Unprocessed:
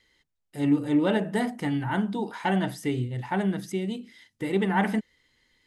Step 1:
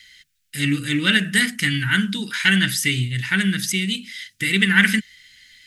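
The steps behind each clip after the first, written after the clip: EQ curve 180 Hz 0 dB, 820 Hz -25 dB, 1500 Hz +8 dB, 2500 Hz +13 dB; gain +7 dB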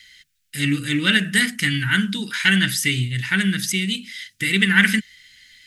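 nothing audible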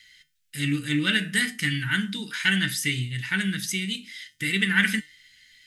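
resonator 150 Hz, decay 0.26 s, harmonics all, mix 60%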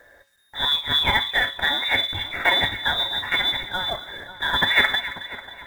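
inverted band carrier 3700 Hz; companded quantiser 6-bit; split-band echo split 1400 Hz, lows 0.54 s, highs 0.271 s, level -13.5 dB; gain +3 dB

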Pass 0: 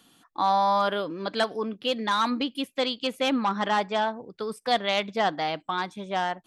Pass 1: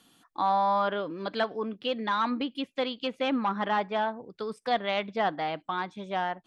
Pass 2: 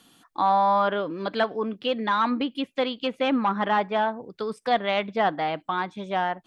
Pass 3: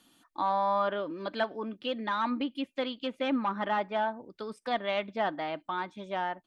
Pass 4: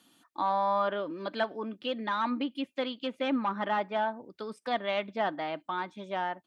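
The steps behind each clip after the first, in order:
treble ducked by the level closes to 2900 Hz, closed at -24.5 dBFS; gain -2.5 dB
dynamic EQ 5400 Hz, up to -4 dB, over -50 dBFS, Q 1.1; gain +4.5 dB
comb 3.3 ms, depth 33%; gain -7 dB
HPF 92 Hz

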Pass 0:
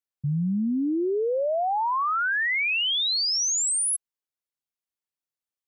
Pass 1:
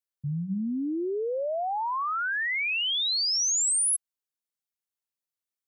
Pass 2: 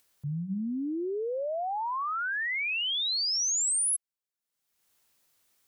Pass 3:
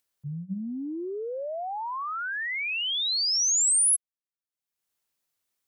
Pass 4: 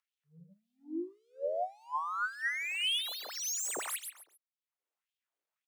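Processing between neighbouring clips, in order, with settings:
high shelf 4400 Hz +5.5 dB; notches 60/120/180 Hz; gain -4.5 dB
upward compressor, threshold -47 dBFS; gain -2.5 dB
upward expander 2.5:1, over -38 dBFS; gain +6 dB
median filter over 9 samples; feedback echo 0.137 s, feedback 27%, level -6 dB; LFO high-pass sine 1.8 Hz 370–3300 Hz; gain -6.5 dB

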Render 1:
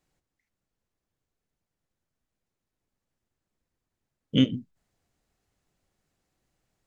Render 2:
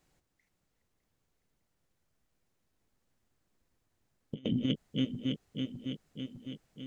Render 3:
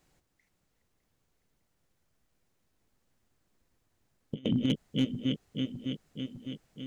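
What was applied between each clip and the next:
regenerating reverse delay 0.303 s, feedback 76%, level -12.5 dB; negative-ratio compressor -31 dBFS, ratio -0.5
overloaded stage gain 21 dB; gain +3 dB

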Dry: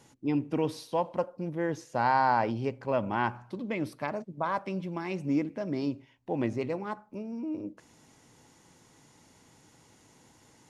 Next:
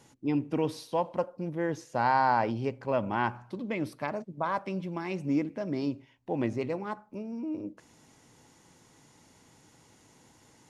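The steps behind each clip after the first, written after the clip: nothing audible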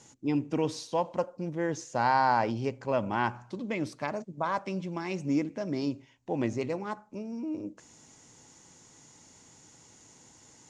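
synth low-pass 7000 Hz, resonance Q 3.1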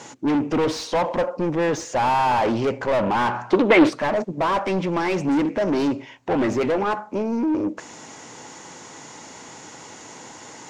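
overdrive pedal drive 31 dB, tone 1500 Hz, clips at -12 dBFS; spectral gain 3.52–3.89, 270–3800 Hz +9 dB; Doppler distortion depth 0.26 ms

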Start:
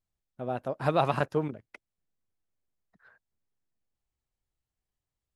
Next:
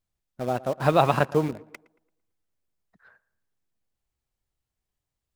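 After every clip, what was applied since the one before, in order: in parallel at -9 dB: requantised 6-bit, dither none; on the sum: tape echo 0.114 s, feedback 43%, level -19 dB, low-pass 2200 Hz; gain +3 dB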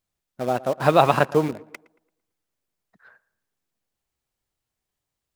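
low shelf 110 Hz -10 dB; gain +4 dB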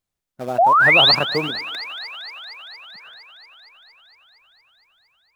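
painted sound rise, 0.58–1.15, 630–5000 Hz -9 dBFS; AGC gain up to 4 dB; thin delay 0.231 s, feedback 77%, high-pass 1500 Hz, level -13 dB; gain -1 dB

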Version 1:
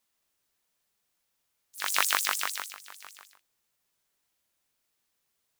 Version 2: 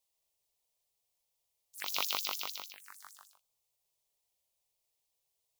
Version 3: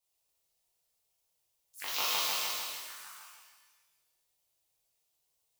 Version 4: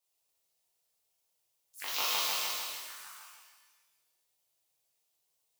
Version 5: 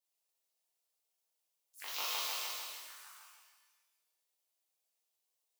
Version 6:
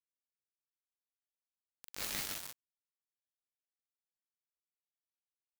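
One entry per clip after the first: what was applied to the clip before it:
envelope phaser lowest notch 250 Hz, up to 1700 Hz, full sweep at -33 dBFS; gain -3.5 dB
shimmer reverb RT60 1.3 s, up +12 st, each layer -8 dB, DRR -7 dB; gain -4.5 dB
low shelf 92 Hz -9.5 dB
HPF 300 Hz 12 dB/oct; gain -6 dB
resonator bank F2 major, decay 0.21 s; bit-crush 7-bit; ring modulator with a swept carrier 820 Hz, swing 70%, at 1 Hz; gain +11.5 dB

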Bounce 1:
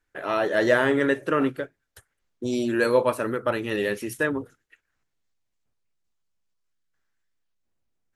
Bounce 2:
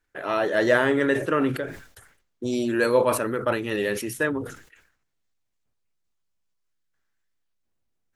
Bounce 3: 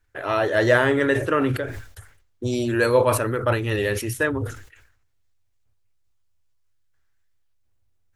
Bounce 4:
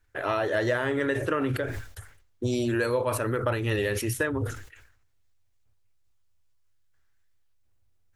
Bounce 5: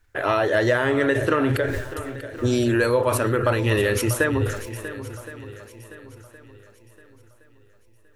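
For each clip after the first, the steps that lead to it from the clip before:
sustainer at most 97 dB/s
resonant low shelf 130 Hz +7.5 dB, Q 3; gain +2.5 dB
compressor 6:1, threshold -23 dBFS, peak gain reduction 11 dB
swung echo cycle 1.067 s, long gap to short 1.5:1, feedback 33%, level -13.5 dB; gain +6 dB

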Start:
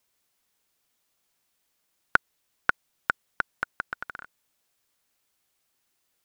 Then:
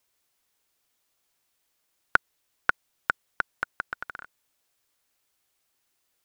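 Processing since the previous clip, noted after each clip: bell 190 Hz -5.5 dB 0.56 oct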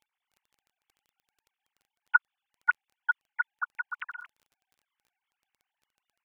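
sine-wave speech; crackle 14/s -49 dBFS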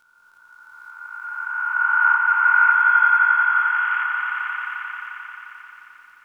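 spectral swells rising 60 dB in 2.81 s; swelling echo 88 ms, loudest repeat 5, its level -6 dB; on a send at -7.5 dB: reverb RT60 0.65 s, pre-delay 3 ms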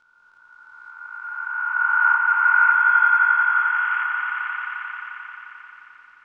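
air absorption 110 m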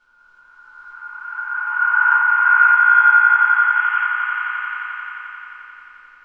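shoebox room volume 54 m³, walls mixed, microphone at 2 m; gain -6 dB

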